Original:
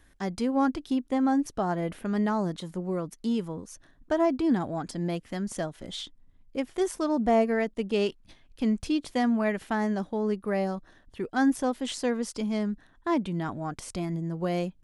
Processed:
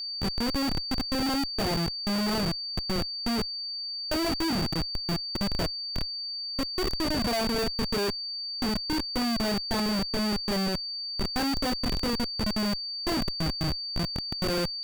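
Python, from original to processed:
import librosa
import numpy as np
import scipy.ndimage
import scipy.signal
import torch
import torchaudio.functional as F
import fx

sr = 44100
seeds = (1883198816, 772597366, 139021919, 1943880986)

y = fx.doubler(x, sr, ms=25.0, db=-3.5)
y = fx.schmitt(y, sr, flips_db=-25.5)
y = y + 10.0 ** (-32.0 / 20.0) * np.sin(2.0 * np.pi * 4600.0 * np.arange(len(y)) / sr)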